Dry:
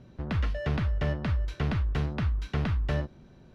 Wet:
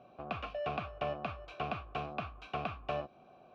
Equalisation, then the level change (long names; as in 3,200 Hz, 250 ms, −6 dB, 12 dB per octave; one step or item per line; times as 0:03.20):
dynamic equaliser 720 Hz, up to −5 dB, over −46 dBFS, Q 0.77
formant filter a
+13.0 dB